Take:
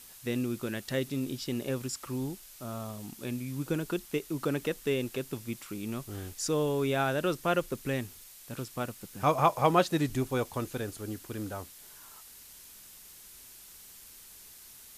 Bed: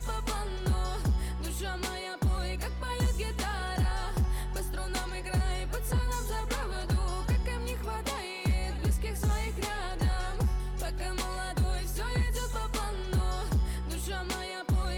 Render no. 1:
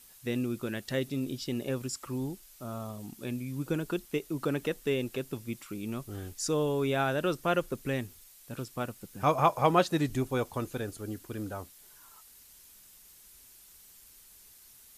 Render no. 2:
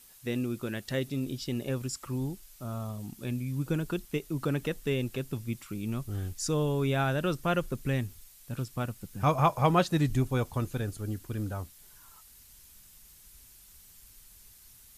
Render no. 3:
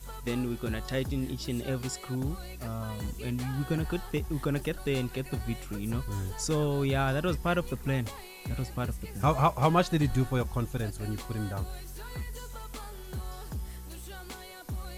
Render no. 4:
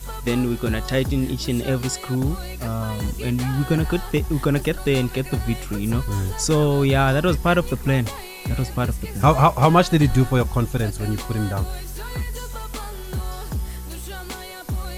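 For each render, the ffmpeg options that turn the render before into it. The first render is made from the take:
-af "afftdn=nr=6:nf=-52"
-af "asubboost=boost=2.5:cutoff=200"
-filter_complex "[1:a]volume=-9dB[a];[0:a][a]amix=inputs=2:normalize=0"
-af "volume=10dB,alimiter=limit=-3dB:level=0:latency=1"

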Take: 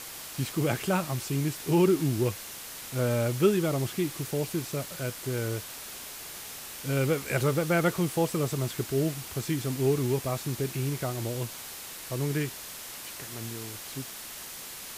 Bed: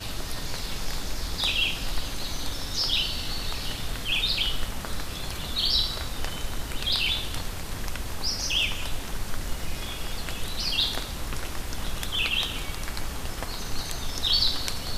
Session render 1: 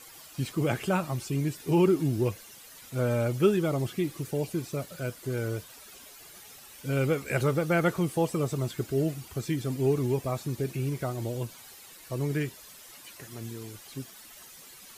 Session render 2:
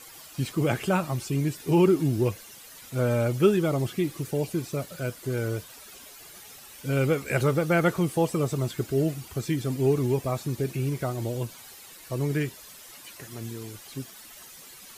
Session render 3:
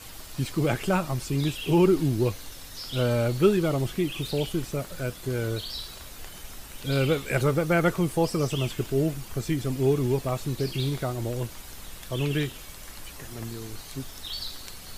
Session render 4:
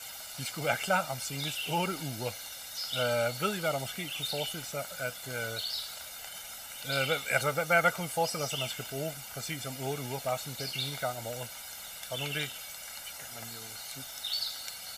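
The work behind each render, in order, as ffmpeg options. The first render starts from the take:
-af "afftdn=nr=12:nf=-42"
-af "volume=2.5dB"
-filter_complex "[1:a]volume=-12.5dB[a];[0:a][a]amix=inputs=2:normalize=0"
-af "highpass=f=890:p=1,aecho=1:1:1.4:0.75"

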